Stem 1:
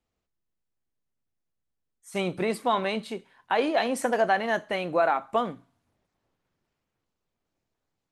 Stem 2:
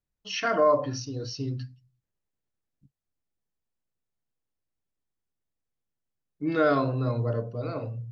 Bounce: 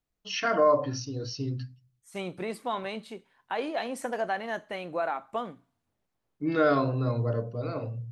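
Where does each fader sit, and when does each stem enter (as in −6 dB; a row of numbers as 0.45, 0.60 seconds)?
−7.0, −0.5 decibels; 0.00, 0.00 seconds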